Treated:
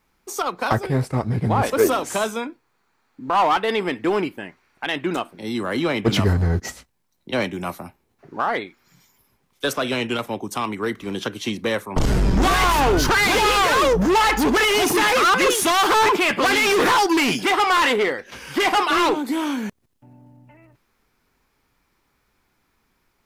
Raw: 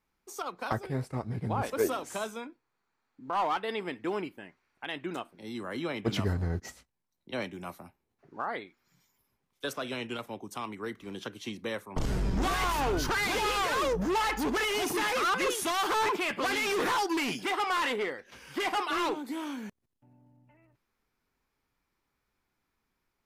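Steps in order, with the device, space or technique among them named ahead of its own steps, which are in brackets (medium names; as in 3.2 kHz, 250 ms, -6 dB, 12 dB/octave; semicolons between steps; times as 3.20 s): parallel distortion (in parallel at -5 dB: hard clipper -31.5 dBFS, distortion -9 dB); on the sum: trim +9 dB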